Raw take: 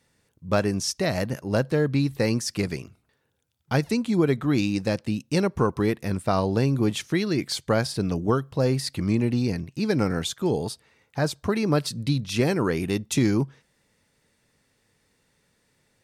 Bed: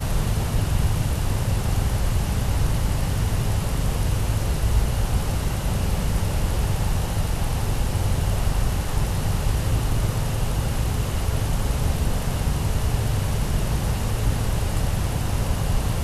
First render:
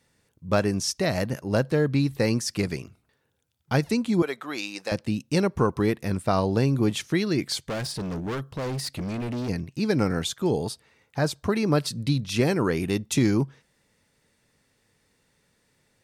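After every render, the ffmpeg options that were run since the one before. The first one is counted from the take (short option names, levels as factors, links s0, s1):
-filter_complex "[0:a]asettb=1/sr,asplit=3[s0][s1][s2];[s0]atrim=end=4.224[s3];[s1]atrim=start=4.22:end=4.92,asetpts=PTS-STARTPTS,afade=t=in:d=0.004:c=qsin,afade=t=out:st=0.696:d=0.004:c=qsin,highpass=620[s4];[s2]atrim=start=4.916[s5];[s3][s4]acrossfade=d=0.004:c1=hsin:c2=qsin[s6];[s6][s5]acrossfade=d=0.004:c1=qsin:c2=hsin,asplit=3[s7][s8][s9];[s7]afade=t=out:st=7.66:d=0.02[s10];[s8]asoftclip=type=hard:threshold=0.0422,afade=t=in:st=7.66:d=0.02,afade=t=out:st=9.48:d=0.02[s11];[s9]afade=t=in:st=9.48:d=0.02[s12];[s10][s11][s12]amix=inputs=3:normalize=0"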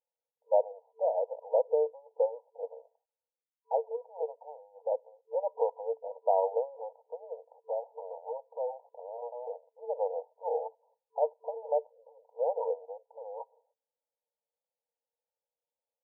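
-af "agate=range=0.0891:threshold=0.00141:ratio=16:detection=peak,afftfilt=real='re*between(b*sr/4096,450,970)':imag='im*between(b*sr/4096,450,970)':win_size=4096:overlap=0.75"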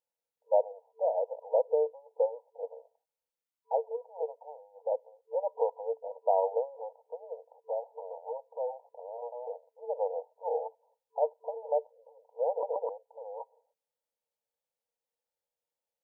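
-filter_complex "[0:a]asplit=4[s0][s1][s2][s3];[s0]atrim=end=12.632[s4];[s1]atrim=start=12.498:end=12.632[s5];[s2]atrim=start=12.498:end=12.632[s6];[s3]atrim=start=12.888[s7];[s4][s5]acrossfade=d=0.004:c1=hsin:c2=hsin[s8];[s8][s6]acrossfade=d=0.004:c1=hsin:c2=hsin[s9];[s9][s7]acrossfade=d=0.004:c1=hsin:c2=hsin"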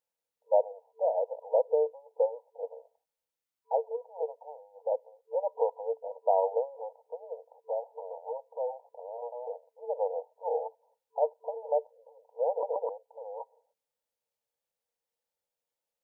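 -af "volume=1.12"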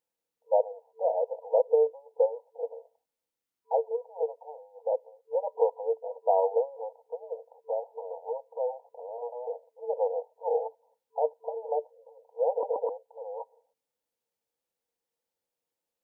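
-af "equalizer=f=290:w=0.93:g=7.5,bandreject=f=590:w=12"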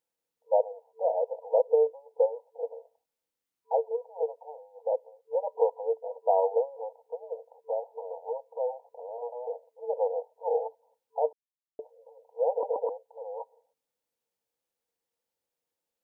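-filter_complex "[0:a]asplit=3[s0][s1][s2];[s0]atrim=end=11.33,asetpts=PTS-STARTPTS,afade=t=out:st=11.326:d=0.004:c=hsin[s3];[s1]atrim=start=11.33:end=11.79,asetpts=PTS-STARTPTS,volume=0[s4];[s2]atrim=start=11.79,asetpts=PTS-STARTPTS,afade=t=in:d=0.004:c=hsin[s5];[s3][s4][s5]concat=n=3:v=0:a=1"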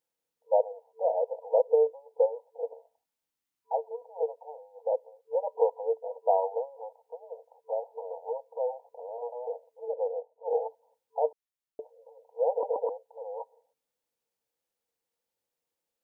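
-filter_complex "[0:a]asettb=1/sr,asplit=3[s0][s1][s2];[s0]atrim=end=2.734[s3];[s1]atrim=start=2.73:end=4.02,asetpts=PTS-STARTPTS,afade=t=in:d=0.004:c=qsin,afade=t=out:st=1.286:d=0.004:c=qsin,equalizer=f=490:t=o:w=0.44:g=-8.5[s4];[s2]atrim=start=4.016[s5];[s3][s4]acrossfade=d=0.004:c1=hsin:c2=qsin[s6];[s6][s5]acrossfade=d=0.004:c1=qsin:c2=hsin,asplit=3[s7][s8][s9];[s7]afade=t=out:st=6.36:d=0.02[s10];[s8]equalizer=f=350:t=o:w=1.1:g=-10,afade=t=in:st=6.36:d=0.02,afade=t=out:st=7.71:d=0.02[s11];[s9]afade=t=in:st=7.71:d=0.02[s12];[s10][s11][s12]amix=inputs=3:normalize=0,asettb=1/sr,asplit=3[s13][s14][s15];[s13]atrim=end=9.884[s16];[s14]atrim=start=9.88:end=10.53,asetpts=PTS-STARTPTS,afade=t=in:d=0.004:c=qsin,afade=t=out:st=0.646:d=0.004:c=qsin,bandpass=f=290:t=q:w=0.76[s17];[s15]atrim=start=10.526[s18];[s16][s17]acrossfade=d=0.004:c1=hsin:c2=qsin[s19];[s19][s18]acrossfade=d=0.004:c1=qsin:c2=hsin"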